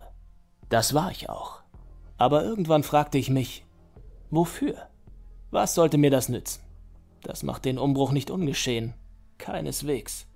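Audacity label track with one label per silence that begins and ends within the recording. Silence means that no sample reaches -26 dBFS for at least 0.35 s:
1.430000	2.210000	silence
3.450000	4.320000	silence
4.710000	5.530000	silence
6.530000	7.260000	silence
8.880000	9.480000	silence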